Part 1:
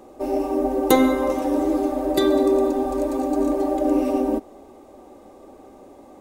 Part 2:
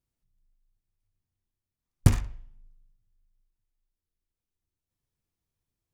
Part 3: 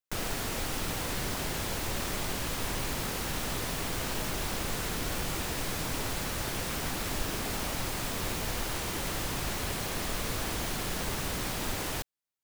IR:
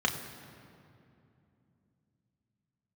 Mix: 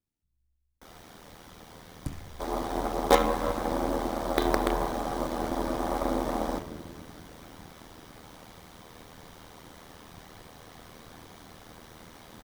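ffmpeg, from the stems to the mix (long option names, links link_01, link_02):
-filter_complex "[0:a]acrossover=split=270 4600:gain=0.112 1 0.178[link_01][link_02][link_03];[link_01][link_02][link_03]amix=inputs=3:normalize=0,acrusher=bits=3:dc=4:mix=0:aa=0.000001,adelay=2200,volume=-2dB,asplit=2[link_04][link_05];[link_05]volume=-11.5dB[link_06];[1:a]equalizer=frequency=270:width=3.7:gain=9.5,acompressor=threshold=-25dB:ratio=6,volume=-2dB[link_07];[2:a]adelay=700,volume=-16dB,asplit=2[link_08][link_09];[link_09]volume=-7.5dB[link_10];[3:a]atrim=start_sample=2205[link_11];[link_06][link_10]amix=inputs=2:normalize=0[link_12];[link_12][link_11]afir=irnorm=-1:irlink=0[link_13];[link_04][link_07][link_08][link_13]amix=inputs=4:normalize=0,aeval=exprs='val(0)*sin(2*PI*40*n/s)':channel_layout=same"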